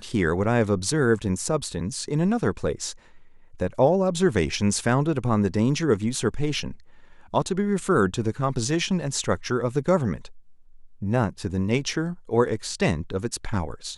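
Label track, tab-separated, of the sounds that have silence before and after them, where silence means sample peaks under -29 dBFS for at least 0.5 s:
3.600000	6.710000	sound
7.340000	10.250000	sound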